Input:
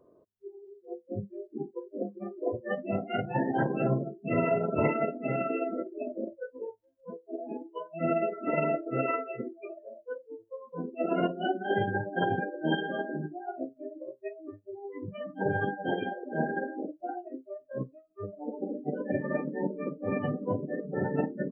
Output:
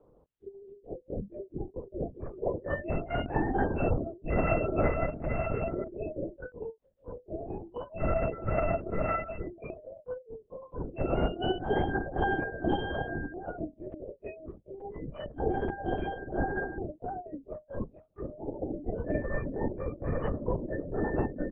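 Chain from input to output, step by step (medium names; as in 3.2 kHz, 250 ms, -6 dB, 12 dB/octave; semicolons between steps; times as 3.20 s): 13.63–15.94 s: LFO notch saw down 3.4 Hz 850–2000 Hz; LPC vocoder at 8 kHz whisper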